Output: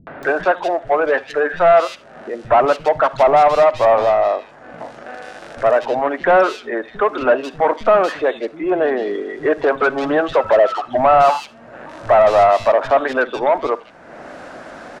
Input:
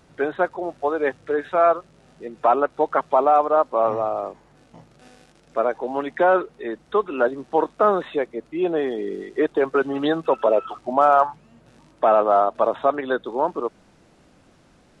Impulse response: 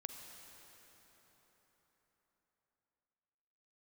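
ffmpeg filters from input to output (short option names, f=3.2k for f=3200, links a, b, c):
-filter_complex "[0:a]equalizer=f=250:t=o:w=0.67:g=6,equalizer=f=630:t=o:w=0.67:g=9,equalizer=f=1.6k:t=o:w=0.67:g=8,asplit=2[a][b];[b]highpass=f=720:p=1,volume=16dB,asoftclip=type=tanh:threshold=-4.5dB[c];[a][c]amix=inputs=2:normalize=0,lowpass=f=2.7k:p=1,volume=-6dB,acompressor=mode=upward:threshold=-20dB:ratio=2.5,acrossover=split=210|2800[d][e][f];[e]adelay=70[g];[f]adelay=230[h];[d][g][h]amix=inputs=3:normalize=0,asplit=2[i][j];[1:a]atrim=start_sample=2205,atrim=end_sample=3969[k];[j][k]afir=irnorm=-1:irlink=0,volume=4.5dB[l];[i][l]amix=inputs=2:normalize=0,volume=-8dB"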